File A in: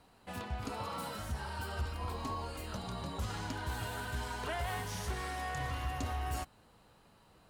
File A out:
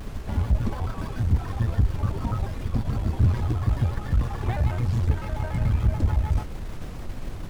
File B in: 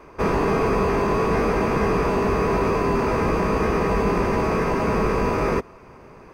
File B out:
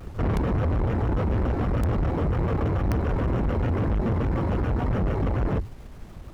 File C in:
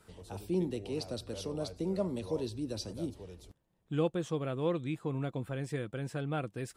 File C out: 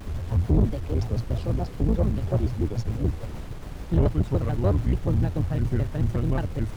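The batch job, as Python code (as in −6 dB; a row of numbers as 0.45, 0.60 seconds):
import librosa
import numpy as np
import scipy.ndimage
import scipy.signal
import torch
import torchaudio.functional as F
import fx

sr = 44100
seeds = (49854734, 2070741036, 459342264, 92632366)

y = fx.octave_divider(x, sr, octaves=2, level_db=-1.0)
y = scipy.signal.sosfilt(scipy.signal.butter(2, 51.0, 'highpass', fs=sr, output='sos'), y)
y = fx.riaa(y, sr, side='playback')
y = fx.dereverb_blind(y, sr, rt60_s=1.3)
y = fx.peak_eq(y, sr, hz=100.0, db=11.5, octaves=0.22)
y = fx.dmg_noise_colour(y, sr, seeds[0], colour='brown', level_db=-35.0)
y = (np.mod(10.0 ** (0.0 / 20.0) * y + 1.0, 2.0) - 1.0) / 10.0 ** (0.0 / 20.0)
y = fx.tube_stage(y, sr, drive_db=19.0, bias=0.55)
y = fx.vibrato_shape(y, sr, shape='square', rate_hz=6.9, depth_cents=250.0)
y = y * 10.0 ** (-24 / 20.0) / np.sqrt(np.mean(np.square(y)))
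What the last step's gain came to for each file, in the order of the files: +6.5, −2.0, +5.0 decibels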